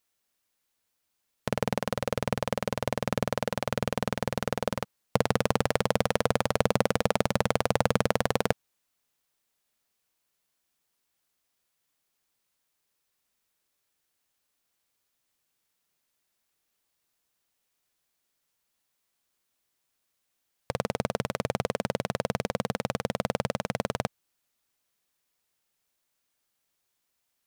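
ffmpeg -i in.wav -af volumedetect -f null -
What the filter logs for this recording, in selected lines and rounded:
mean_volume: -33.3 dB
max_volume: -4.6 dB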